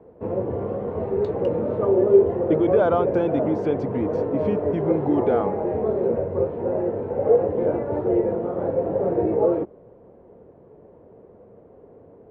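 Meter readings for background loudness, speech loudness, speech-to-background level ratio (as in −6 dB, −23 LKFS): −23.0 LKFS, −25.0 LKFS, −2.0 dB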